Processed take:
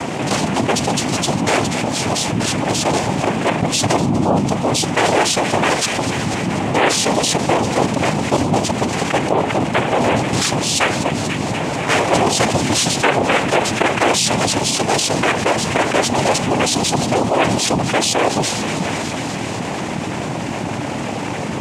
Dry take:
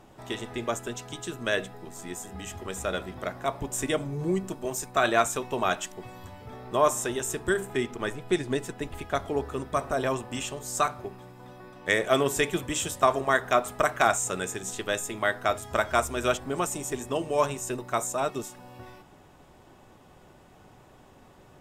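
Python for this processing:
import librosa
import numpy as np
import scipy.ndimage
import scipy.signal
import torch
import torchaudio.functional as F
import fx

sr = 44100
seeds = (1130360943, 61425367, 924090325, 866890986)

p1 = fx.low_shelf(x, sr, hz=130.0, db=7.0)
p2 = fx.notch(p1, sr, hz=1400.0, q=5.2)
p3 = fx.noise_vocoder(p2, sr, seeds[0], bands=4)
p4 = p3 + fx.echo_wet_highpass(p3, sr, ms=244, feedback_pct=64, hz=2000.0, wet_db=-15.5, dry=0)
p5 = fx.env_flatten(p4, sr, amount_pct=70)
y = F.gain(torch.from_numpy(p5), 5.0).numpy()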